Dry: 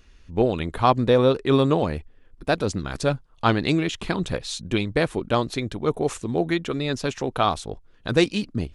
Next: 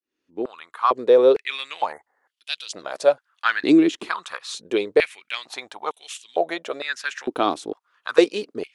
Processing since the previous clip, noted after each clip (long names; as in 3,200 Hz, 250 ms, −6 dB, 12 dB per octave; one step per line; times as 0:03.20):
fade in at the beginning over 1.58 s
healed spectral selection 0:01.94–0:02.31, 2,200–6,200 Hz after
high-pass on a step sequencer 2.2 Hz 310–3,100 Hz
level −2 dB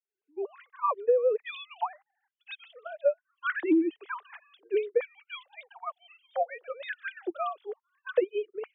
three sine waves on the formant tracks
downward compressor 6 to 1, threshold −19 dBFS, peak gain reduction 11 dB
level −2 dB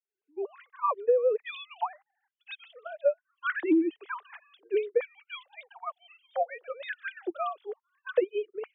no processing that can be heard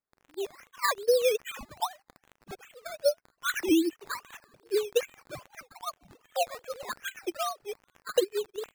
surface crackle 110 per second −40 dBFS
sample-and-hold swept by an LFO 12×, swing 60% 2.5 Hz